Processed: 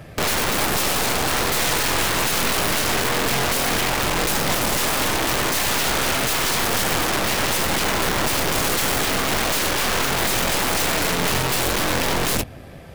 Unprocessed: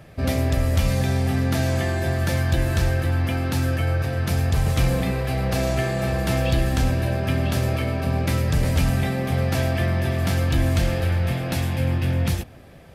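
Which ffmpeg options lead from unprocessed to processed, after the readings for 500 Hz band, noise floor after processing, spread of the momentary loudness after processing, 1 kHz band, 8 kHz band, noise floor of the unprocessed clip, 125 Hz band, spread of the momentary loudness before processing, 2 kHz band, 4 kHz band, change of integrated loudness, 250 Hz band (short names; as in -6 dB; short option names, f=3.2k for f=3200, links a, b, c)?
+2.0 dB, -38 dBFS, 1 LU, +9.0 dB, +14.5 dB, -44 dBFS, -10.5 dB, 3 LU, +8.5 dB, +12.0 dB, +3.0 dB, -1.5 dB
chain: -af "aeval=exprs='(mod(14.1*val(0)+1,2)-1)/14.1':c=same,aeval=exprs='0.075*(cos(1*acos(clip(val(0)/0.075,-1,1)))-cos(1*PI/2))+0.0266*(cos(2*acos(clip(val(0)/0.075,-1,1)))-cos(2*PI/2))':c=same,volume=6dB"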